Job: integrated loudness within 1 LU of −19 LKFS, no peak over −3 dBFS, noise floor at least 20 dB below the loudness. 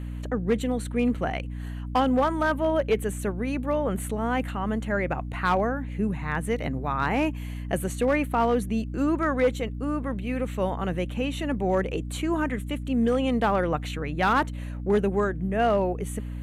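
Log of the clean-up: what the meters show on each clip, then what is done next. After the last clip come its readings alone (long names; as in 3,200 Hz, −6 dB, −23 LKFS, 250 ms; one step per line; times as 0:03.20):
share of clipped samples 0.6%; peaks flattened at −15.5 dBFS; mains hum 60 Hz; hum harmonics up to 300 Hz; level of the hum −31 dBFS; integrated loudness −26.5 LKFS; sample peak −15.5 dBFS; target loudness −19.0 LKFS
→ clipped peaks rebuilt −15.5 dBFS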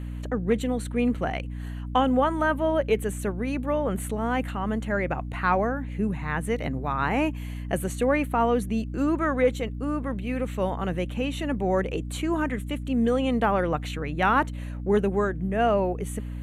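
share of clipped samples 0.0%; mains hum 60 Hz; hum harmonics up to 300 Hz; level of the hum −31 dBFS
→ hum removal 60 Hz, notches 5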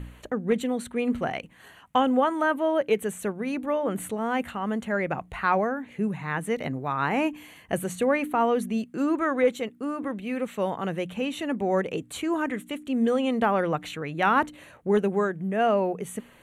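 mains hum none found; integrated loudness −27.0 LKFS; sample peak −8.5 dBFS; target loudness −19.0 LKFS
→ level +8 dB
brickwall limiter −3 dBFS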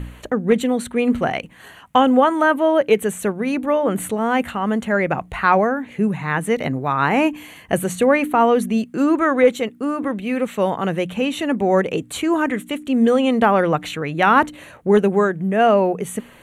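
integrated loudness −19.0 LKFS; sample peak −3.0 dBFS; background noise floor −45 dBFS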